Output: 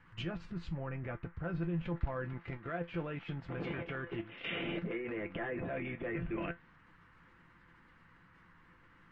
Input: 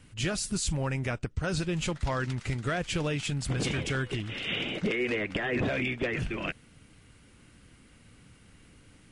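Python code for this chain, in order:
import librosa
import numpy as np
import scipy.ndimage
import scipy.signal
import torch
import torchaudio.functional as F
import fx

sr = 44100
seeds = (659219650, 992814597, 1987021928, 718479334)

y = scipy.signal.sosfilt(scipy.signal.butter(2, 2800.0, 'lowpass', fs=sr, output='sos'), x)
y = fx.env_lowpass_down(y, sr, base_hz=1800.0, full_db=-29.0)
y = fx.low_shelf(y, sr, hz=190.0, db=-10.5, at=(2.33, 4.63))
y = fx.level_steps(y, sr, step_db=13)
y = fx.comb_fb(y, sr, f0_hz=170.0, decay_s=0.16, harmonics='all', damping=0.0, mix_pct=80)
y = fx.dmg_noise_band(y, sr, seeds[0], low_hz=900.0, high_hz=2000.0, level_db=-74.0)
y = y * 10.0 ** (8.0 / 20.0)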